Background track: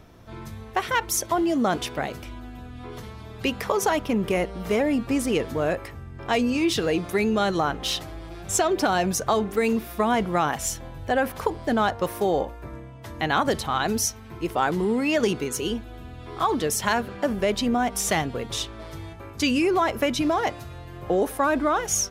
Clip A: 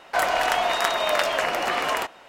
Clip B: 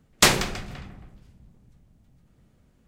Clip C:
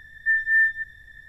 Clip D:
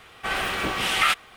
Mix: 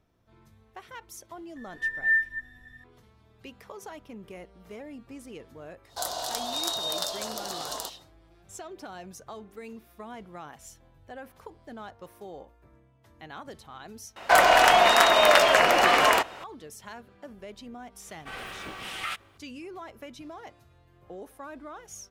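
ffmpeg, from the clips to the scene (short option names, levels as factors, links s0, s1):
-filter_complex "[1:a]asplit=2[s0][s1];[0:a]volume=0.1[s2];[3:a]asplit=2[s3][s4];[s4]adelay=10.5,afreqshift=3[s5];[s3][s5]amix=inputs=2:normalize=1[s6];[s0]firequalizer=gain_entry='entry(910,0);entry(2300,-16);entry(3700,13)':delay=0.05:min_phase=1[s7];[s1]acontrast=53[s8];[s6]atrim=end=1.28,asetpts=PTS-STARTPTS,volume=0.75,afade=t=in:d=0.004:c=hsin,afade=t=out:st=1.276:d=0.004:c=hsin,adelay=1560[s9];[s7]atrim=end=2.28,asetpts=PTS-STARTPTS,volume=0.251,afade=t=in:d=0.1,afade=t=out:st=2.18:d=0.1,adelay=5830[s10];[s8]atrim=end=2.28,asetpts=PTS-STARTPTS,volume=0.891,afade=t=in:d=0.004:c=hsin,afade=t=out:st=2.276:d=0.004:c=hsin,adelay=14160[s11];[4:a]atrim=end=1.36,asetpts=PTS-STARTPTS,volume=0.224,afade=t=in:d=0.004:c=hsin,afade=t=out:st=1.356:d=0.004:c=hsin,adelay=18020[s12];[s2][s9][s10][s11][s12]amix=inputs=5:normalize=0"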